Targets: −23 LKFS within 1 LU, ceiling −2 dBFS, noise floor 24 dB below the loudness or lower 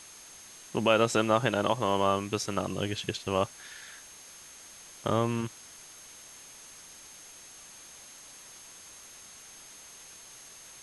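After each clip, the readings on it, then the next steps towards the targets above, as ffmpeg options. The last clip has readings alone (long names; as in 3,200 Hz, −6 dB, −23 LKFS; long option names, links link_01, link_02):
interfering tone 6,400 Hz; level of the tone −51 dBFS; background noise floor −50 dBFS; target noise floor −53 dBFS; integrated loudness −29.0 LKFS; sample peak −10.0 dBFS; target loudness −23.0 LKFS
→ -af "bandreject=frequency=6400:width=30"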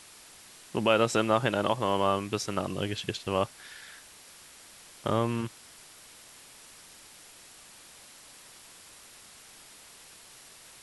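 interfering tone none found; background noise floor −52 dBFS; target noise floor −53 dBFS
→ -af "afftdn=noise_reduction=6:noise_floor=-52"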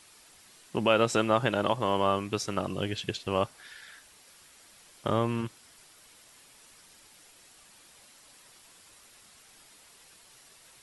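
background noise floor −57 dBFS; integrated loudness −29.0 LKFS; sample peak −10.0 dBFS; target loudness −23.0 LKFS
→ -af "volume=6dB"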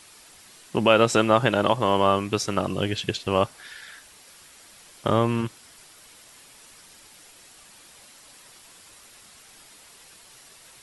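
integrated loudness −23.0 LKFS; sample peak −4.0 dBFS; background noise floor −51 dBFS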